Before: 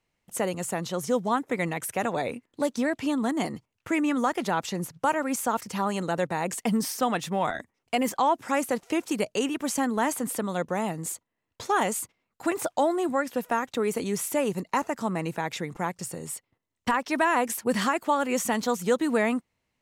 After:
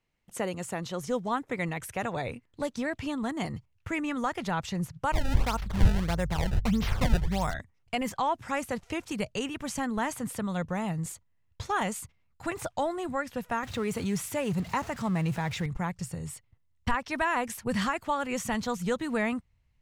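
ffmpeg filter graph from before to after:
ffmpeg -i in.wav -filter_complex "[0:a]asettb=1/sr,asplit=3[link_01][link_02][link_03];[link_01]atrim=end=5.124[link_04];[link_02]atrim=start=5.12:end=7.54,asetpts=PTS-STARTPTS,afade=type=in:duration=0.004:curve=qsin,afade=type=out:start_time=2.416:duration=0.004:curve=qsin,acrusher=samples=23:mix=1:aa=0.000001:lfo=1:lforange=36.8:lforate=1.6,aeval=exprs='val(0)+0.00355*(sin(2*PI*50*n/s)+sin(2*PI*2*50*n/s)/2+sin(2*PI*3*50*n/s)/3+sin(2*PI*4*50*n/s)/4+sin(2*PI*5*50*n/s)/5)':channel_layout=same[link_05];[link_03]atrim=start=7.536[link_06];[link_04][link_05]acrossfade=duration=0.004:curve1=hsin:curve2=qsin[link_07];[link_07][link_06]acrossfade=duration=0.004:curve1=qsin:curve2=hsin,asettb=1/sr,asplit=3[link_08][link_09][link_10];[link_08]atrim=end=13.634[link_11];[link_09]atrim=start=13.63:end=15.66,asetpts=PTS-STARTPTS,afade=type=in:duration=0.004:curve=qsin,afade=type=out:start_time=2.026:duration=0.004:curve=qsin,aeval=exprs='val(0)+0.5*0.0141*sgn(val(0))':channel_layout=same,highpass=72[link_12];[link_10]atrim=start=15.656[link_13];[link_11][link_12]acrossfade=duration=0.004:curve1=hsin:curve2=qsin[link_14];[link_14][link_13]acrossfade=duration=0.004:curve1=qsin:curve2=hsin,asubboost=boost=11:cutoff=88,lowpass=frequency=3800:poles=1,equalizer=frequency=670:width=0.48:gain=-4" out.wav

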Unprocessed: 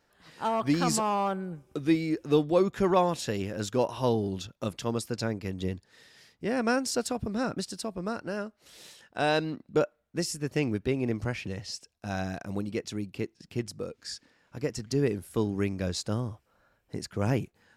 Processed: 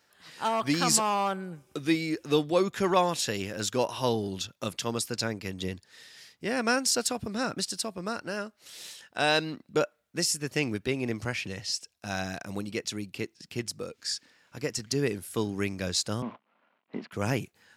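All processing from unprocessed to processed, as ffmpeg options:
ffmpeg -i in.wav -filter_complex "[0:a]asettb=1/sr,asplit=3[link_01][link_02][link_03];[link_01]atrim=end=16.224[link_04];[link_02]atrim=start=16.22:end=17.12,asetpts=PTS-STARTPTS,afade=type=in:duration=0.004:curve=qsin,afade=type=out:start_time=0.896:duration=0.004:curve=qsin,acrusher=bits=9:dc=4:mix=0:aa=0.000001,highpass=frequency=180:width=0.5412,highpass=frequency=180:width=1.3066,equalizer=frequency=230:width_type=q:width=4:gain=9,equalizer=frequency=660:width_type=q:width=4:gain=5,equalizer=frequency=1000:width_type=q:width=4:gain=6,equalizer=frequency=1700:width_type=q:width=4:gain=-5,lowpass=frequency=2700:width=0.5412,lowpass=frequency=2700:width=1.3066[link_05];[link_03]atrim=start=17.116[link_06];[link_04][link_05]acrossfade=duration=0.004:curve1=hsin:curve2=qsin[link_07];[link_07][link_06]acrossfade=duration=0.004:curve1=qsin:curve2=hsin,highpass=77,tiltshelf=frequency=1300:gain=-5,volume=2.5dB" out.wav

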